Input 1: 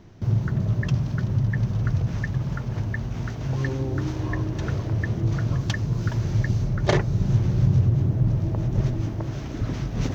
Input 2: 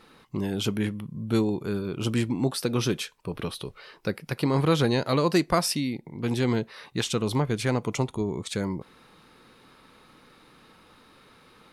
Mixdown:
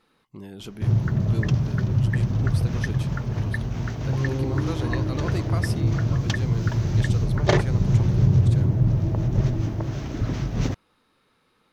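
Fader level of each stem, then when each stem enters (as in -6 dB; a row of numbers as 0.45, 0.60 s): +1.5, -11.0 dB; 0.60, 0.00 s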